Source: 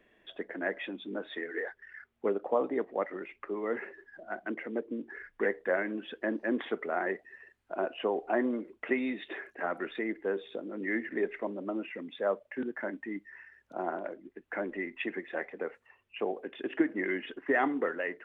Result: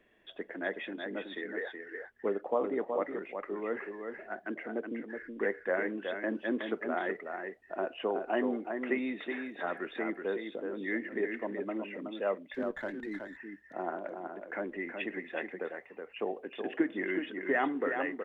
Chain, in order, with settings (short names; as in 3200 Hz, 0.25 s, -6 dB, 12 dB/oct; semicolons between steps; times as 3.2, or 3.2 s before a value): echo 0.372 s -6 dB; 12.54–13.37 running maximum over 3 samples; gain -2 dB